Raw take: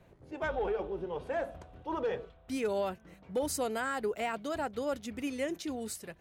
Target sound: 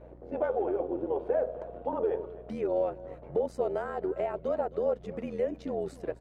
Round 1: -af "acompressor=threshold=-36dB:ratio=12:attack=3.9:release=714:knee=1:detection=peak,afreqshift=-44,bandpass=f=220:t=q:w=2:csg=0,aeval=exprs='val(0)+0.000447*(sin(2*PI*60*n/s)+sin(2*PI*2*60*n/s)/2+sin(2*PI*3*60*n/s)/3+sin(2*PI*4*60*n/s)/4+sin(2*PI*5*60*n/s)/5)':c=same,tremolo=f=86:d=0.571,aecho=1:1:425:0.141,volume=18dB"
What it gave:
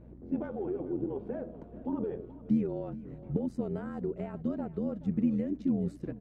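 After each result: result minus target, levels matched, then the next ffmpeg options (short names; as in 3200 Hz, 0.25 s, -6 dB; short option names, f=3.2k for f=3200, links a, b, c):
echo 0.159 s late; 250 Hz band +9.5 dB
-af "acompressor=threshold=-36dB:ratio=12:attack=3.9:release=714:knee=1:detection=peak,afreqshift=-44,bandpass=f=220:t=q:w=2:csg=0,aeval=exprs='val(0)+0.000447*(sin(2*PI*60*n/s)+sin(2*PI*2*60*n/s)/2+sin(2*PI*3*60*n/s)/3+sin(2*PI*4*60*n/s)/4+sin(2*PI*5*60*n/s)/5)':c=same,tremolo=f=86:d=0.571,aecho=1:1:266:0.141,volume=18dB"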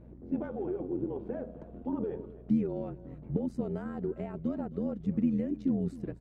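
250 Hz band +9.5 dB
-af "acompressor=threshold=-36dB:ratio=12:attack=3.9:release=714:knee=1:detection=peak,afreqshift=-44,bandpass=f=540:t=q:w=2:csg=0,aeval=exprs='val(0)+0.000447*(sin(2*PI*60*n/s)+sin(2*PI*2*60*n/s)/2+sin(2*PI*3*60*n/s)/3+sin(2*PI*4*60*n/s)/4+sin(2*PI*5*60*n/s)/5)':c=same,tremolo=f=86:d=0.571,aecho=1:1:266:0.141,volume=18dB"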